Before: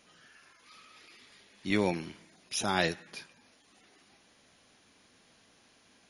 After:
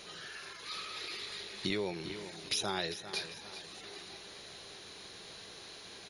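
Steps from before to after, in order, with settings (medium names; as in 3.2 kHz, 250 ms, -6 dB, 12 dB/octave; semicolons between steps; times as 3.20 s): graphic EQ with 31 bands 250 Hz -12 dB, 400 Hz +8 dB, 4 kHz +10 dB; compression 12:1, threshold -43 dBFS, peak gain reduction 22 dB; on a send: feedback delay 399 ms, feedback 43%, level -12 dB; on the sum: trim +11 dB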